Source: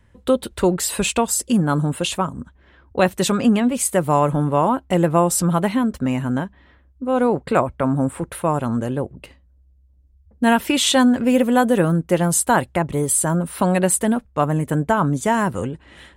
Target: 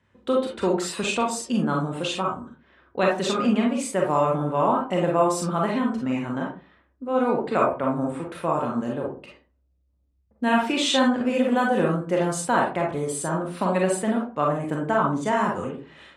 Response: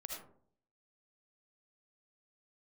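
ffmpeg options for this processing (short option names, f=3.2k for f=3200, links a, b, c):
-filter_complex "[0:a]highpass=160,lowpass=5.7k[a];[1:a]atrim=start_sample=2205,asetrate=83790,aresample=44100[b];[a][b]afir=irnorm=-1:irlink=0,volume=5dB"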